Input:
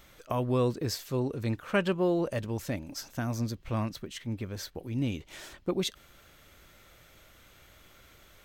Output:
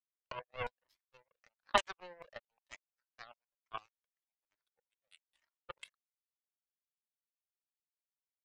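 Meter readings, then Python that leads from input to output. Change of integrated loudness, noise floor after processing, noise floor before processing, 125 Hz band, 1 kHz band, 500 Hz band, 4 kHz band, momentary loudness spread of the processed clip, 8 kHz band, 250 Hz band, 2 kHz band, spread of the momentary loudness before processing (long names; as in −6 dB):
−8.0 dB, below −85 dBFS, −58 dBFS, −29.0 dB, −2.5 dB, −15.0 dB, −7.0 dB, 23 LU, −13.0 dB, −28.5 dB, −5.5 dB, 10 LU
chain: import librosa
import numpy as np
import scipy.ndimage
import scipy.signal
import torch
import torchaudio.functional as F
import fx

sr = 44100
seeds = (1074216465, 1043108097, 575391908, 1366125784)

y = scipy.signal.sosfilt(scipy.signal.butter(16, 470.0, 'highpass', fs=sr, output='sos'), x)
y = fx.high_shelf(y, sr, hz=11000.0, db=-7.0)
y = fx.filter_lfo_lowpass(y, sr, shape='saw_down', hz=4.5, low_hz=920.0, high_hz=3900.0, q=3.8)
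y = fx.power_curve(y, sr, exponent=3.0)
y = fx.comb_cascade(y, sr, direction='rising', hz=1.1)
y = y * librosa.db_to_amplitude(9.0)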